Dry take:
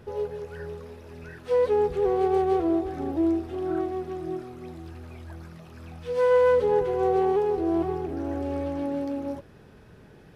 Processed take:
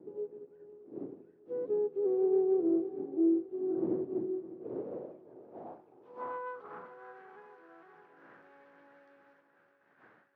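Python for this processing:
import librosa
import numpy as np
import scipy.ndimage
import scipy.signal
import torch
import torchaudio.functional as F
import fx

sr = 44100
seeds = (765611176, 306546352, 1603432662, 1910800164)

p1 = fx.dmg_wind(x, sr, seeds[0], corner_hz=290.0, level_db=-28.0)
p2 = scipy.signal.sosfilt(scipy.signal.butter(4, 110.0, 'highpass', fs=sr, output='sos'), p1)
p3 = fx.hum_notches(p2, sr, base_hz=50, count=5)
p4 = fx.leveller(p3, sr, passes=2)
p5 = fx.filter_sweep_bandpass(p4, sr, from_hz=360.0, to_hz=1600.0, start_s=4.31, end_s=7.22, q=4.0)
p6 = p5 + fx.echo_feedback(p5, sr, ms=608, feedback_pct=46, wet_db=-12.0, dry=0)
p7 = fx.upward_expand(p6, sr, threshold_db=-34.0, expansion=1.5)
y = p7 * librosa.db_to_amplitude(-8.5)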